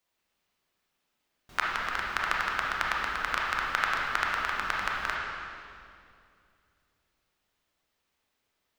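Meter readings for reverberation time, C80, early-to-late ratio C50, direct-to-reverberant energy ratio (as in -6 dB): 2.4 s, 0.5 dB, -1.5 dB, -3.5 dB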